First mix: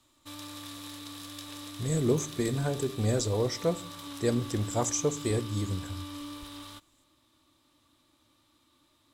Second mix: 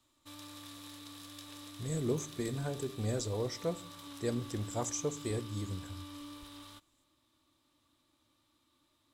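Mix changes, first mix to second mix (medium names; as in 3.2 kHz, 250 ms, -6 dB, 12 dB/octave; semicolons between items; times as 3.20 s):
speech -7.0 dB; background -6.5 dB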